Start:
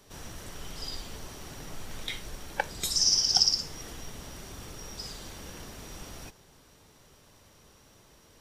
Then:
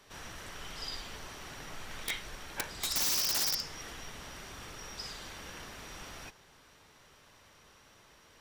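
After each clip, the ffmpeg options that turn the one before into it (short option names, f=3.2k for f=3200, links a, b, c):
-af "equalizer=f=1.8k:w=0.44:g=10,aeval=exprs='(mod(7.94*val(0)+1,2)-1)/7.94':c=same,volume=-6.5dB"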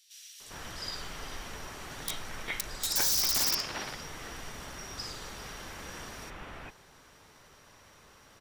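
-filter_complex "[0:a]acrossover=split=3100[a][b];[a]adelay=400[c];[c][b]amix=inputs=2:normalize=0,volume=3.5dB"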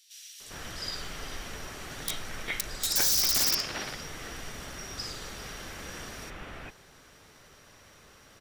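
-af "equalizer=f=950:w=2.8:g=-5,volume=2.5dB"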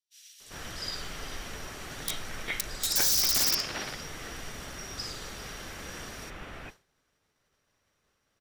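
-af "agate=range=-33dB:threshold=-42dB:ratio=3:detection=peak"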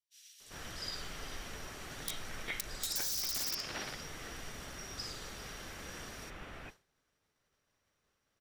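-af "acompressor=threshold=-28dB:ratio=6,volume=-5dB"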